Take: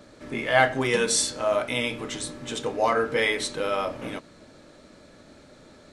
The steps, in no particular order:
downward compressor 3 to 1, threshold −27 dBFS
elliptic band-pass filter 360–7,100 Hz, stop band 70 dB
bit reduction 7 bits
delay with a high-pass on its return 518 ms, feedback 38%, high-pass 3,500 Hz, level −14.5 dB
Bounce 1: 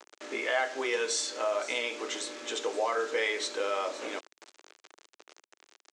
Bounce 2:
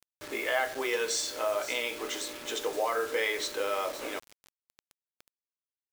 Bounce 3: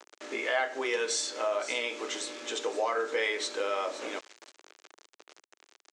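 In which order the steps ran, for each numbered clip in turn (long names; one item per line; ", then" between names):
downward compressor, then delay with a high-pass on its return, then bit reduction, then elliptic band-pass filter
delay with a high-pass on its return, then downward compressor, then elliptic band-pass filter, then bit reduction
delay with a high-pass on its return, then bit reduction, then downward compressor, then elliptic band-pass filter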